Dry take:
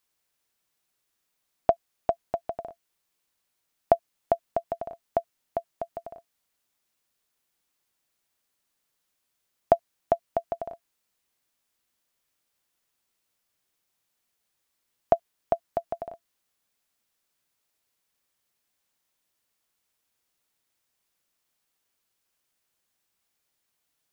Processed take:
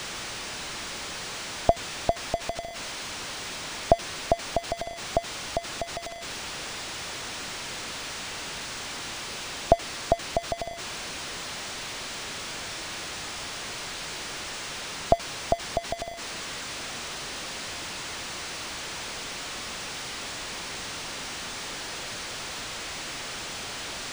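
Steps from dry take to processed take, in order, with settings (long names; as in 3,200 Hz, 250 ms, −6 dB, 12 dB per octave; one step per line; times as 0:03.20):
spike at every zero crossing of −16.5 dBFS
spectral tilt −3.5 dB per octave
linearly interpolated sample-rate reduction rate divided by 3×
level −1.5 dB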